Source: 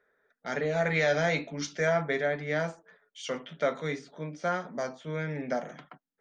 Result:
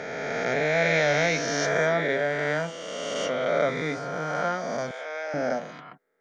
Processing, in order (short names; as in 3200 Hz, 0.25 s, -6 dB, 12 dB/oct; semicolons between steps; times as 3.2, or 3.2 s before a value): spectral swells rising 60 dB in 2.80 s; 4.91–5.34 HPF 560 Hz 24 dB/oct